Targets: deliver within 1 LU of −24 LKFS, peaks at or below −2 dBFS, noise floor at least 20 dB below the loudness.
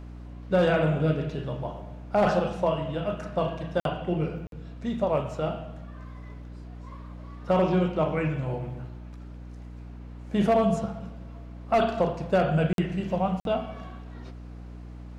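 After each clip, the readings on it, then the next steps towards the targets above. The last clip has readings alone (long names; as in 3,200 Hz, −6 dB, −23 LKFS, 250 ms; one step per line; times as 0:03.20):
number of dropouts 4; longest dropout 52 ms; mains hum 60 Hz; hum harmonics up to 300 Hz; level of the hum −39 dBFS; integrated loudness −27.0 LKFS; sample peak −12.0 dBFS; target loudness −24.0 LKFS
→ repair the gap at 0:03.80/0:04.47/0:12.73/0:13.40, 52 ms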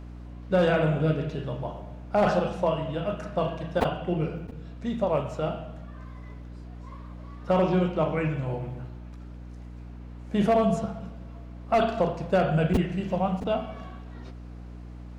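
number of dropouts 0; mains hum 60 Hz; hum harmonics up to 300 Hz; level of the hum −39 dBFS
→ hum removal 60 Hz, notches 5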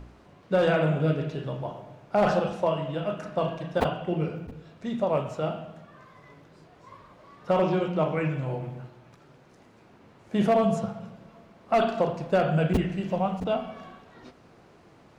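mains hum none found; integrated loudness −27.0 LKFS; sample peak −10.0 dBFS; target loudness −24.0 LKFS
→ level +3 dB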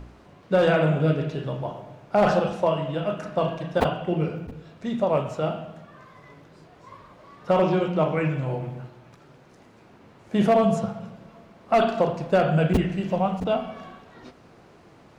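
integrated loudness −24.0 LKFS; sample peak −7.0 dBFS; background noise floor −53 dBFS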